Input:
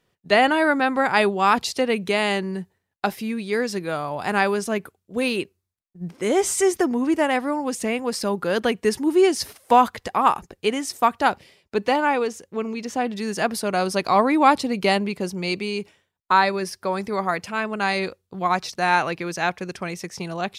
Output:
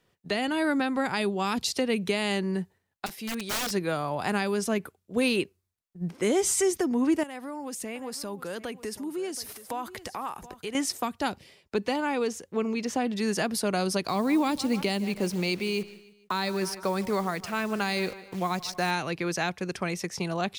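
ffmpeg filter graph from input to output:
-filter_complex "[0:a]asettb=1/sr,asplit=3[a][b][c];[a]atrim=end=3.064[d];[b]atrim=start=3.06:end=3.71,asetpts=PTS-STARTPTS,afade=t=in:d=0.004:c=qsin,afade=t=out:st=0.646:d=0.004:c=qsin,highpass=f=340:p=1,aeval=exprs='(mod(16.8*val(0)+1,2)-1)/16.8':c=same[e];[c]atrim=start=3.706[f];[d][e]acrossfade=d=0.004:c1=hsin:c2=qsin[g];[g][f]acrossfade=d=0.004:c1=qsin:c2=hsin,asettb=1/sr,asplit=3[h][i][j];[h]atrim=end=7.234[k];[i]atrim=start=7.23:end=10.75,asetpts=PTS-STARTPTS,afade=t=in:d=0.004:c=qsin,afade=t=out:st=3.516:d=0.004:c=qsin,highshelf=f=8.6k:g=10.5,acompressor=threshold=-36dB:ratio=3:attack=3.2:release=140:knee=1:detection=peak,aecho=1:1:725:0.158,atrim=end_sample=155232[l];[j]atrim=start=10.746[m];[k][l]acrossfade=d=0.004:c1=hsin:c2=qsin[n];[n][m]acrossfade=d=0.004:c1=qsin:c2=hsin,asettb=1/sr,asplit=3[o][p][q];[o]atrim=end=14.084[r];[p]atrim=start=14.08:end=18.91,asetpts=PTS-STARTPTS,afade=t=in:d=0.004:c=qsin,afade=t=out:st=4.826:d=0.004:c=qsin,acrusher=bits=8:dc=4:mix=0:aa=0.000001,aecho=1:1:152|304|456:0.106|0.0455|0.0196,atrim=end_sample=213003[s];[q]atrim=start=18.906[t];[r][s]acrossfade=d=0.004:c1=hsin:c2=qsin[u];[u][t]acrossfade=d=0.004:c1=qsin:c2=hsin,acrossover=split=350|3000[v][w][x];[w]acompressor=threshold=-27dB:ratio=6[y];[v][y][x]amix=inputs=3:normalize=0,alimiter=limit=-16dB:level=0:latency=1:release=424"

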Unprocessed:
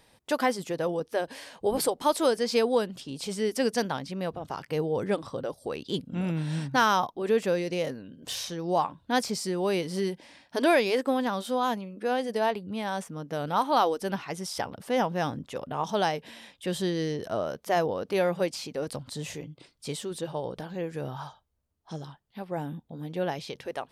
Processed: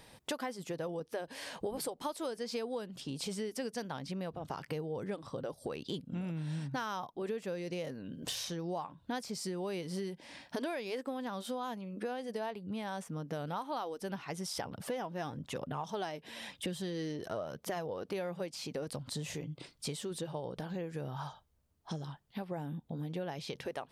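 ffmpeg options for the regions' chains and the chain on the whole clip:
-filter_complex "[0:a]asettb=1/sr,asplit=3[a][b][c];[a]atrim=end=14.644[d];[b]atrim=start=14.64:end=18.06,asetpts=PTS-STARTPTS,afade=t=in:d=0.004:c=qsin,afade=t=out:st=3.416:d=0.004:c=qsin,aphaser=in_gain=1:out_gain=1:delay=3.5:decay=0.36:speed=1:type=triangular,highpass=54[e];[c]atrim=start=18.056[f];[d][e]acrossfade=d=0.004:c1=hsin:c2=qsin[g];[g][f]acrossfade=d=0.004:c1=qsin:c2=hsin,equalizer=f=150:t=o:w=0.77:g=3,acompressor=threshold=-40dB:ratio=6,volume=3.5dB"

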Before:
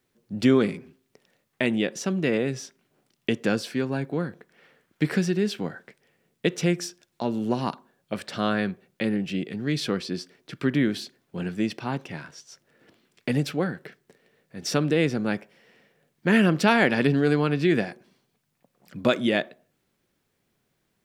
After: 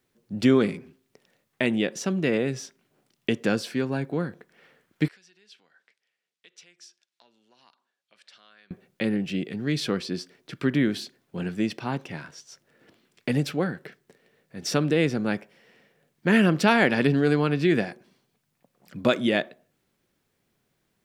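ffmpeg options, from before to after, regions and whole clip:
-filter_complex "[0:a]asettb=1/sr,asplit=3[a][b][c];[a]atrim=end=5.084[d];[b]atrim=start=5.08:end=8.71,asetpts=PTS-STARTPTS,afade=t=in:d=0.004:c=qsin,afade=t=out:st=3.626:d=0.004:c=qsin,lowpass=4.2k,acompressor=threshold=-44dB:ratio=2:attack=3.2:release=140:knee=1:detection=peak,aderivative[e];[c]atrim=start=8.706[f];[d][e]acrossfade=d=0.004:c1=hsin:c2=qsin[g];[g][f]acrossfade=d=0.004:c1=qsin:c2=hsin"

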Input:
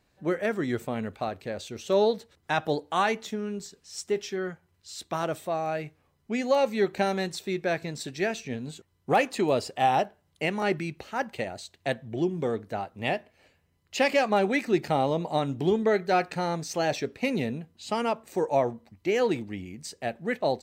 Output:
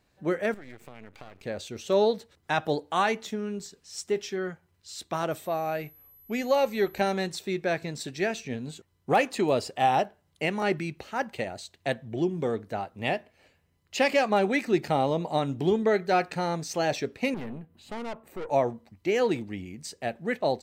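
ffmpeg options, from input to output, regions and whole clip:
-filter_complex "[0:a]asettb=1/sr,asplit=3[a][b][c];[a]atrim=end=0.544[d];[b]atrim=start=0.54:end=1.43,asetpts=PTS-STARTPTS,afade=t=in:d=0.004:c=qsin,afade=t=out:st=0.886:d=0.004:c=qsin,equalizer=f=2.3k:t=o:w=0.57:g=8.5,acompressor=threshold=-40dB:ratio=6:attack=3.2:release=140:knee=1:detection=peak,aeval=exprs='max(val(0),0)':c=same[e];[c]atrim=start=1.426[f];[d][e]acrossfade=d=0.004:c1=hsin:c2=qsin[g];[g][f]acrossfade=d=0.004:c1=qsin:c2=hsin,asettb=1/sr,asplit=3[h][i][j];[h]atrim=end=5.314[k];[i]atrim=start=5.31:end=7.01,asetpts=PTS-STARTPTS,afade=t=in:d=0.004:c=qsin,afade=t=out:st=1.696:d=0.004:c=qsin,asubboost=boost=10:cutoff=62,aeval=exprs='val(0)+0.00224*sin(2*PI*12000*n/s)':c=same[l];[j]atrim=start=7.006[m];[k][l]acrossfade=d=0.004:c1=hsin:c2=qsin[n];[n][m]acrossfade=d=0.004:c1=qsin:c2=hsin,asettb=1/sr,asplit=3[o][p][q];[o]atrim=end=17.344[r];[p]atrim=start=17.34:end=18.5,asetpts=PTS-STARTPTS,afade=t=in:d=0.004:c=qsin,afade=t=out:st=1.156:d=0.004:c=qsin,equalizer=f=5.7k:t=o:w=1.6:g=-14.5,aeval=exprs='(tanh(44.7*val(0)+0.55)-tanh(0.55))/44.7':c=same,acompressor=mode=upward:threshold=-47dB:ratio=2.5:attack=3.2:release=140:knee=2.83:detection=peak[s];[q]atrim=start=18.496[t];[r][s]acrossfade=d=0.004:c1=hsin:c2=qsin[u];[u][t]acrossfade=d=0.004:c1=qsin:c2=hsin"

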